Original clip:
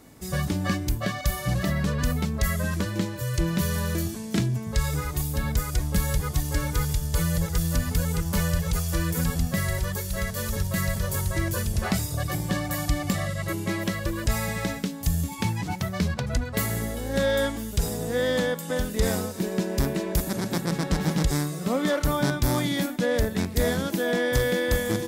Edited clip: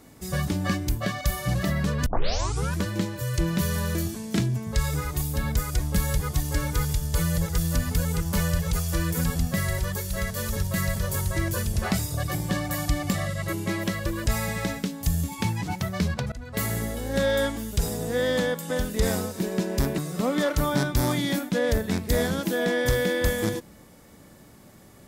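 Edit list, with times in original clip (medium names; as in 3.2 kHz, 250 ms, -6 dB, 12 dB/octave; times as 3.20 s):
2.06 s: tape start 0.70 s
16.32–16.66 s: fade in, from -23.5 dB
19.98–21.45 s: delete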